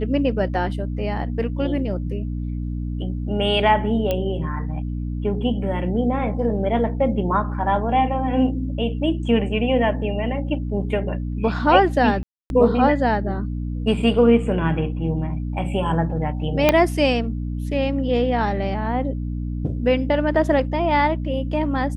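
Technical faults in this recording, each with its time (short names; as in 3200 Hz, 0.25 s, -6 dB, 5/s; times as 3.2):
hum 60 Hz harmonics 5 -26 dBFS
4.11 pop -10 dBFS
12.23–12.5 gap 0.271 s
16.69 pop -1 dBFS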